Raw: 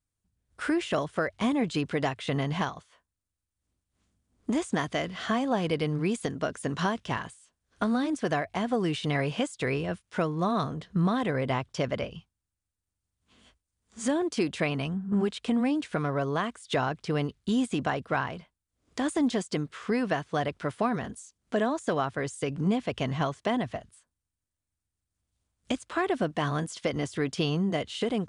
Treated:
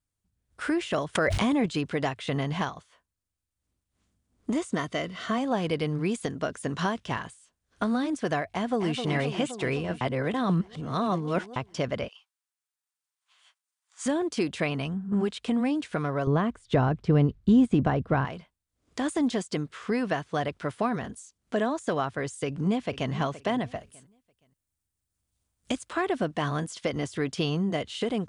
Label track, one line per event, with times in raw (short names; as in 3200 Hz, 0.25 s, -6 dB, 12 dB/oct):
1.150000	1.660000	fast leveller amount 100%
4.530000	5.380000	notch comb 830 Hz
8.490000	8.990000	echo throw 0.26 s, feedback 75%, level -7.5 dB
10.010000	11.560000	reverse
12.080000	14.060000	HPF 880 Hz 24 dB/oct
16.270000	18.250000	tilt -3.5 dB/oct
22.450000	23.120000	echo throw 0.47 s, feedback 25%, level -14.5 dB
23.770000	25.930000	high shelf 8300 Hz +8.5 dB